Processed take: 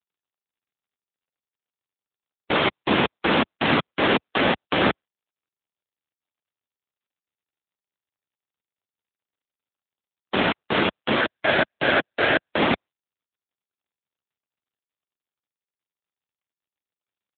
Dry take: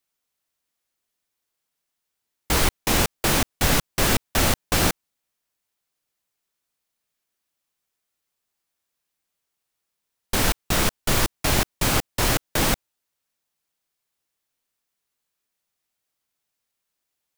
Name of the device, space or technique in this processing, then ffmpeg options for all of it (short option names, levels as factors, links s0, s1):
mobile call with aggressive noise cancelling: -filter_complex "[0:a]asplit=3[s0][s1][s2];[s0]afade=t=out:st=11.19:d=0.02[s3];[s1]equalizer=f=200:t=o:w=0.33:g=-10,equalizer=f=630:t=o:w=0.33:g=6,equalizer=f=1000:t=o:w=0.33:g=-10,equalizer=f=1600:t=o:w=0.33:g=8,equalizer=f=6300:t=o:w=0.33:g=9,afade=t=in:st=11.19:d=0.02,afade=t=out:st=12.48:d=0.02[s4];[s2]afade=t=in:st=12.48:d=0.02[s5];[s3][s4][s5]amix=inputs=3:normalize=0,highpass=f=180:w=0.5412,highpass=f=180:w=1.3066,afftdn=nr=21:nf=-37,volume=2" -ar 8000 -c:a libopencore_amrnb -b:a 7950